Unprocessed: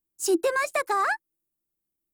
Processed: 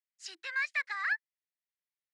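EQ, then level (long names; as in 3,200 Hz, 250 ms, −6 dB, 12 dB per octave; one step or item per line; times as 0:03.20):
high-pass with resonance 1,900 Hz, resonance Q 5.5
transistor ladder low-pass 5,700 Hz, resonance 35%
−4.0 dB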